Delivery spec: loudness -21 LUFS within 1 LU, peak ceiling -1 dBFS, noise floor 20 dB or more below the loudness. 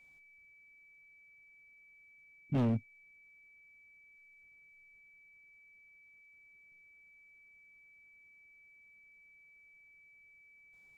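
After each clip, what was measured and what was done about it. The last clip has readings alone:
clipped samples 0.5%; clipping level -26.5 dBFS; steady tone 2.3 kHz; tone level -59 dBFS; loudness -34.0 LUFS; peak level -26.5 dBFS; loudness target -21.0 LUFS
-> clip repair -26.5 dBFS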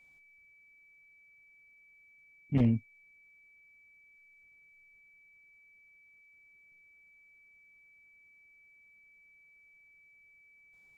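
clipped samples 0.0%; steady tone 2.3 kHz; tone level -59 dBFS
-> band-stop 2.3 kHz, Q 30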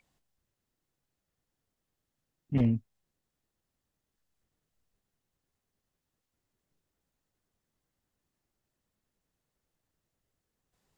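steady tone not found; loudness -30.0 LUFS; peak level -17.5 dBFS; loudness target -21.0 LUFS
-> trim +9 dB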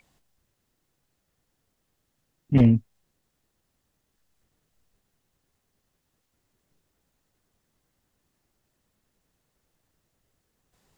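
loudness -21.0 LUFS; peak level -8.5 dBFS; noise floor -77 dBFS

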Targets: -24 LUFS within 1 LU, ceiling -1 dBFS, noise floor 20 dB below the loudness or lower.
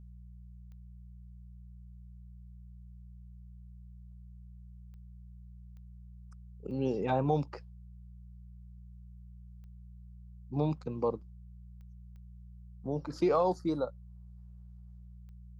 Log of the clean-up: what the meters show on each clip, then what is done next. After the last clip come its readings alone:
clicks found 8; hum 60 Hz; highest harmonic 180 Hz; hum level -48 dBFS; loudness -33.0 LUFS; peak level -15.5 dBFS; loudness target -24.0 LUFS
-> de-click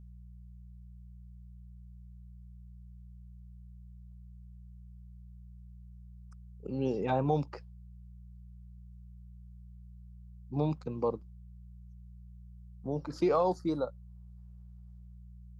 clicks found 0; hum 60 Hz; highest harmonic 180 Hz; hum level -48 dBFS
-> de-hum 60 Hz, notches 3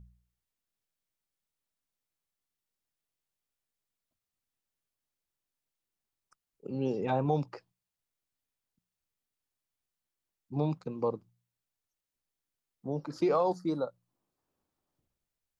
hum not found; loudness -32.5 LUFS; peak level -15.5 dBFS; loudness target -24.0 LUFS
-> trim +8.5 dB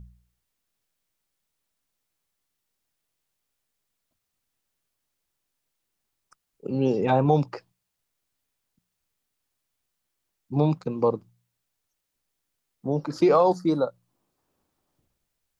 loudness -24.0 LUFS; peak level -7.0 dBFS; noise floor -81 dBFS

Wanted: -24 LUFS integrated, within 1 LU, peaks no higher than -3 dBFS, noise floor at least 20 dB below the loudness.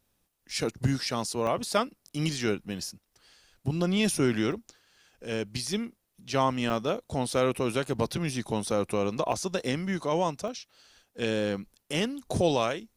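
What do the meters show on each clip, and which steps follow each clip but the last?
dropouts 6; longest dropout 1.1 ms; loudness -29.5 LUFS; peak level -10.0 dBFS; loudness target -24.0 LUFS
-> interpolate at 0.51/1.47/4.52/6.70/9.32/10.48 s, 1.1 ms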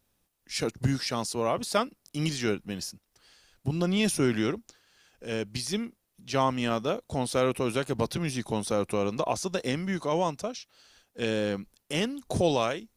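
dropouts 0; loudness -29.5 LUFS; peak level -10.0 dBFS; loudness target -24.0 LUFS
-> trim +5.5 dB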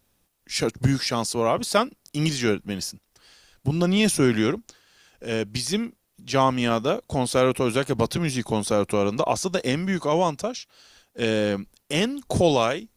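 loudness -24.0 LUFS; peak level -4.5 dBFS; noise floor -70 dBFS

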